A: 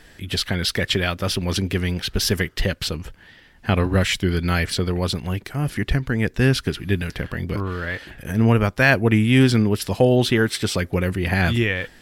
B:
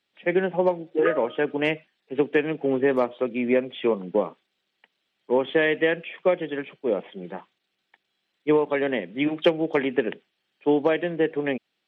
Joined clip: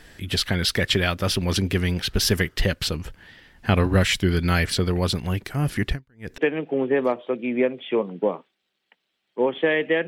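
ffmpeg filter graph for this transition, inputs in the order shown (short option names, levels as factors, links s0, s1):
-filter_complex "[0:a]asettb=1/sr,asplit=3[s0][s1][s2];[s0]atrim=end=5.874[s3];[s1]atrim=start=5.87:end=6.38,asetpts=PTS-STARTPTS,afade=t=in:d=0.004:c=qsin,afade=t=out:st=0.506:d=0.004:c=qsin,aeval=exprs='val(0)*pow(10,-37*(0.5-0.5*cos(2*PI*2.1*n/s))/20)':c=same[s4];[s2]atrim=start=6.376[s5];[s3][s4]acrossfade=d=0.004:c1=hsin:c2=qsin[s6];[s6][s5]acrossfade=d=0.004:c1=qsin:c2=hsin,apad=whole_dur=10.07,atrim=end=10.07,atrim=end=6.382[s7];[1:a]atrim=start=2.298:end=5.99[s8];[s7][s8]acrossfade=d=0.004:c1=hsin:c2=hsin"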